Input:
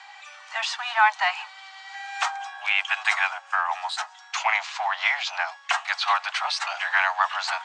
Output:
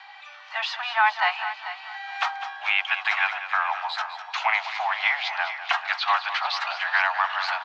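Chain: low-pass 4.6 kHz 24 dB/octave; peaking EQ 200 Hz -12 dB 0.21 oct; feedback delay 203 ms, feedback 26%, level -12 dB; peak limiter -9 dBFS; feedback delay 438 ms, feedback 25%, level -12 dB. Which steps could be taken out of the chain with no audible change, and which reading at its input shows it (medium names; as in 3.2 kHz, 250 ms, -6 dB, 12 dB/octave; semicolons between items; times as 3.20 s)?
peaking EQ 200 Hz: input has nothing below 540 Hz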